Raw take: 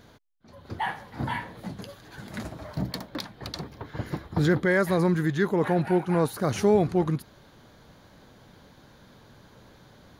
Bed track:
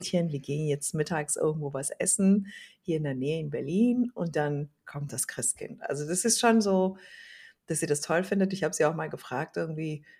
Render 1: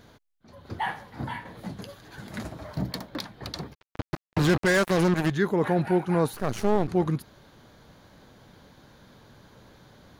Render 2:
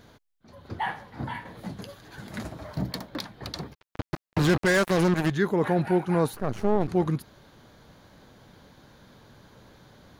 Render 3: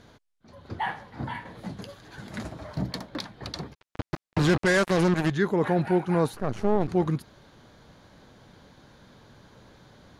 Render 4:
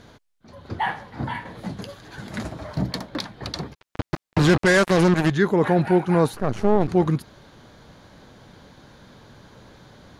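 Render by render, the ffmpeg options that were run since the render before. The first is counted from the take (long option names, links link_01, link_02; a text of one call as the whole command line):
ffmpeg -i in.wav -filter_complex "[0:a]asplit=3[link_01][link_02][link_03];[link_01]afade=type=out:start_time=3.73:duration=0.02[link_04];[link_02]acrusher=bits=3:mix=0:aa=0.5,afade=type=in:start_time=3.73:duration=0.02,afade=type=out:start_time=5.29:duration=0.02[link_05];[link_03]afade=type=in:start_time=5.29:duration=0.02[link_06];[link_04][link_05][link_06]amix=inputs=3:normalize=0,asettb=1/sr,asplit=3[link_07][link_08][link_09];[link_07]atrim=end=6.344[link_10];[link_08]atrim=start=6.34:end=6.88,asetpts=PTS-STARTPTS,afade=type=in:duration=0.004:curve=qsin,afade=type=out:start_time=0.536:duration=0.004:curve=qsin,aeval=exprs='max(val(0),0)':channel_layout=same[link_11];[link_09]atrim=start=6.876[link_12];[link_10][link_11]acrossfade=duration=0.004:curve1=hsin:curve2=qsin[link_13];[link_13][link_12]acrossfade=duration=0.004:curve1=qsin:curve2=hsin,asplit=2[link_14][link_15];[link_14]atrim=end=1.45,asetpts=PTS-STARTPTS,afade=type=out:start_time=0.97:duration=0.48:silence=0.473151[link_16];[link_15]atrim=start=1.45,asetpts=PTS-STARTPTS,afade=type=in:duration=0.004:curve=hsin:silence=0.473151[link_17];[link_16][link_17]concat=n=2:v=0:a=1" out.wav
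ffmpeg -i in.wav -filter_complex "[0:a]asettb=1/sr,asplit=3[link_01][link_02][link_03];[link_01]atrim=end=0.674[link_04];[link_02]atrim=start=0.67:end=1.35,asetpts=PTS-STARTPTS,afade=type=in:duration=0.004:curve=qsin,afade=type=out:start_time=0.676:duration=0.004:curve=qsin,highshelf=frequency=6000:gain=-5.5[link_05];[link_03]atrim=start=1.346[link_06];[link_04][link_05]acrossfade=duration=0.004:curve1=hsin:curve2=qsin[link_07];[link_07][link_06]acrossfade=duration=0.004:curve1=qsin:curve2=hsin,asplit=3[link_08][link_09][link_10];[link_08]afade=type=out:start_time=6.34:duration=0.02[link_11];[link_09]highshelf=frequency=2400:gain=-11.5,afade=type=in:start_time=6.34:duration=0.02,afade=type=out:start_time=6.8:duration=0.02[link_12];[link_10]afade=type=in:start_time=6.8:duration=0.02[link_13];[link_11][link_12][link_13]amix=inputs=3:normalize=0" out.wav
ffmpeg -i in.wav -af "lowpass=10000" out.wav
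ffmpeg -i in.wav -af "volume=5dB" out.wav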